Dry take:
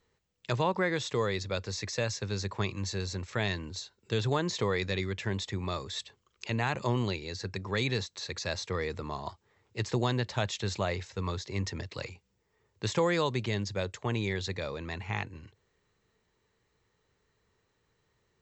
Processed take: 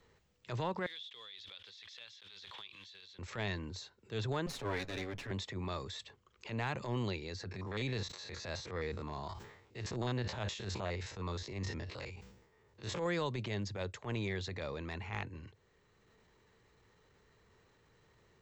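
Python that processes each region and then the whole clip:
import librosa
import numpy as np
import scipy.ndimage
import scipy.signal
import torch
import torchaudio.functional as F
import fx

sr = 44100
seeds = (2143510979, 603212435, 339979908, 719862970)

y = fx.chain(x, sr, fx.block_float(bits=5),
    fx.bandpass_q(hz=3400.0, q=10.0),
    fx.pre_swell(db_per_s=28.0), at=(0.86, 3.19))
y = fx.chain(y, sr, fx.lower_of_two(delay_ms=7.2),
    fx.band_widen(depth_pct=40), at=(4.46, 5.31))
y = fx.chain(y, sr, fx.spec_steps(hold_ms=50),
    fx.sustainer(db_per_s=82.0), at=(7.51, 13.06))
y = fx.high_shelf(y, sr, hz=4800.0, db=-6.5)
y = fx.transient(y, sr, attack_db=-11, sustain_db=2)
y = fx.band_squash(y, sr, depth_pct=40)
y = F.gain(torch.from_numpy(y), -4.5).numpy()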